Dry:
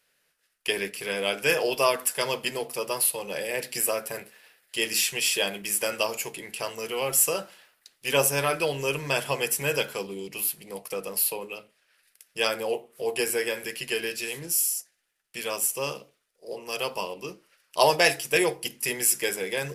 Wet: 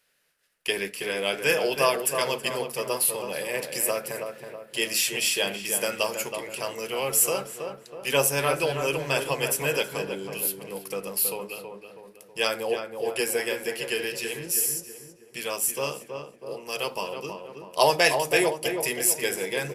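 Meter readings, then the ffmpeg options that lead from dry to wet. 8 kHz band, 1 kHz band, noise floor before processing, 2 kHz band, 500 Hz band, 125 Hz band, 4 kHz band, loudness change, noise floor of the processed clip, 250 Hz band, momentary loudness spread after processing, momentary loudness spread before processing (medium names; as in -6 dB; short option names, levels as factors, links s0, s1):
0.0 dB, +1.0 dB, -72 dBFS, +0.5 dB, +1.0 dB, +1.0 dB, 0.0 dB, +0.5 dB, -53 dBFS, +1.5 dB, 14 LU, 13 LU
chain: -filter_complex "[0:a]asplit=2[s0][s1];[s1]adelay=323,lowpass=f=1600:p=1,volume=0.531,asplit=2[s2][s3];[s3]adelay=323,lowpass=f=1600:p=1,volume=0.51,asplit=2[s4][s5];[s5]adelay=323,lowpass=f=1600:p=1,volume=0.51,asplit=2[s6][s7];[s7]adelay=323,lowpass=f=1600:p=1,volume=0.51,asplit=2[s8][s9];[s9]adelay=323,lowpass=f=1600:p=1,volume=0.51,asplit=2[s10][s11];[s11]adelay=323,lowpass=f=1600:p=1,volume=0.51[s12];[s0][s2][s4][s6][s8][s10][s12]amix=inputs=7:normalize=0"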